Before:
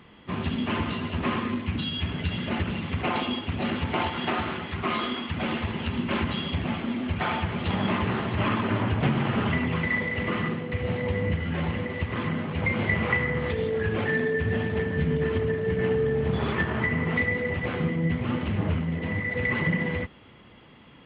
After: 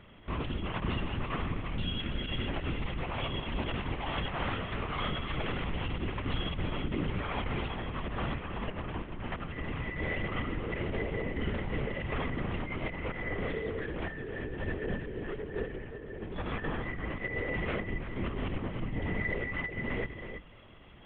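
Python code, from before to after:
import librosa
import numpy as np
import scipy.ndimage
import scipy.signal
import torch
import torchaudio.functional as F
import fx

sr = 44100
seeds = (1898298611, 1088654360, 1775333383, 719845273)

y = fx.hum_notches(x, sr, base_hz=50, count=3)
y = fx.over_compress(y, sr, threshold_db=-29.0, ratio=-0.5)
y = y + 10.0 ** (-8.5 / 20.0) * np.pad(y, (int(329 * sr / 1000.0), 0))[:len(y)]
y = fx.lpc_vocoder(y, sr, seeds[0], excitation='whisper', order=10)
y = y * 10.0 ** (-5.0 / 20.0)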